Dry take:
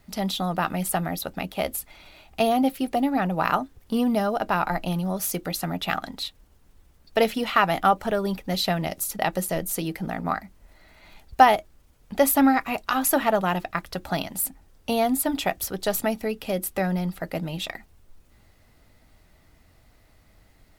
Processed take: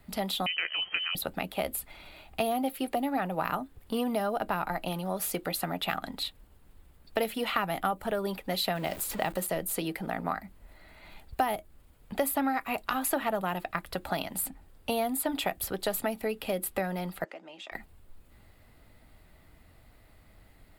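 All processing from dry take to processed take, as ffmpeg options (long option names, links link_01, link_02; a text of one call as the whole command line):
ffmpeg -i in.wav -filter_complex "[0:a]asettb=1/sr,asplit=3[link_01][link_02][link_03];[link_01]atrim=end=0.464[link_04];[link_02]atrim=start=0.46:end=1.15,asetpts=PTS-STARTPTS,afade=type=in:duration=0.004:curve=qsin,afade=type=out:start_time=0.686:duration=0.004:curve=qsin,lowpass=frequency=2700:width_type=q:width=0.5098,lowpass=frequency=2700:width_type=q:width=0.6013,lowpass=frequency=2700:width_type=q:width=0.9,lowpass=frequency=2700:width_type=q:width=2.563,afreqshift=-3200,acompressor=mode=upward:threshold=-34dB:ratio=2.5:attack=3.2:release=140:knee=2.83:detection=peak[link_05];[link_03]atrim=start=1.146[link_06];[link_04][link_05]acrossfade=duration=0.004:curve1=hsin:curve2=qsin[link_07];[link_07][link_06]acrossfade=duration=0.004:curve1=qsin:curve2=hsin,asettb=1/sr,asplit=3[link_08][link_09][link_10];[link_08]atrim=end=8.754[link_11];[link_09]atrim=start=8.75:end=9.47,asetpts=PTS-STARTPTS,afade=type=in:duration=0.004:curve=qsin,afade=type=out:start_time=0.716:duration=0.004:curve=qsin,aeval=exprs='val(0)+0.5*0.0188*sgn(val(0))':channel_layout=same,equalizer=frequency=11000:width=3.5:gain=-6.5[link_12];[link_10]atrim=start=9.466[link_13];[link_11][link_12]acrossfade=duration=0.004:curve1=hsin:curve2=qsin[link_14];[link_14][link_13]acrossfade=duration=0.004:curve1=qsin:curve2=hsin,asettb=1/sr,asplit=3[link_15][link_16][link_17];[link_15]atrim=end=17.244[link_18];[link_16]atrim=start=17.24:end=17.72,asetpts=PTS-STARTPTS,afade=type=in:duration=0.004:curve=qsin,afade=type=out:start_time=0.476:duration=0.004:curve=qsin,acompressor=threshold=-38dB:ratio=4:attack=3.2:release=140:knee=1:detection=peak,highpass=frequency=340:width=0.5412,highpass=frequency=340:width=1.3066,equalizer=frequency=470:width_type=q:width=4:gain=-6,equalizer=frequency=4100:width_type=q:width=4:gain=-9,equalizer=frequency=6300:width_type=q:width=4:gain=5,lowpass=frequency=6900:width=0.5412,lowpass=frequency=6900:width=1.3066[link_19];[link_17]atrim=start=17.716[link_20];[link_18][link_19]acrossfade=duration=0.004:curve1=hsin:curve2=qsin[link_21];[link_21][link_20]acrossfade=duration=0.004:curve1=qsin:curve2=hsin,equalizer=frequency=5900:width_type=o:width=0.48:gain=-10.5,acrossover=split=330|7600[link_22][link_23][link_24];[link_22]acompressor=threshold=-39dB:ratio=4[link_25];[link_23]acompressor=threshold=-28dB:ratio=4[link_26];[link_24]acompressor=threshold=-33dB:ratio=4[link_27];[link_25][link_26][link_27]amix=inputs=3:normalize=0" out.wav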